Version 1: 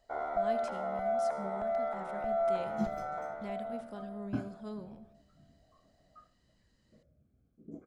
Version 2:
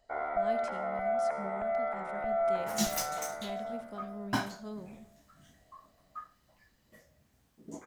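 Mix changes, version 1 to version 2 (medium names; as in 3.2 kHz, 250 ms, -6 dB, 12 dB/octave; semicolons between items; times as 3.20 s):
first sound: add resonant low-pass 2.3 kHz, resonance Q 2.5; second sound: remove boxcar filter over 47 samples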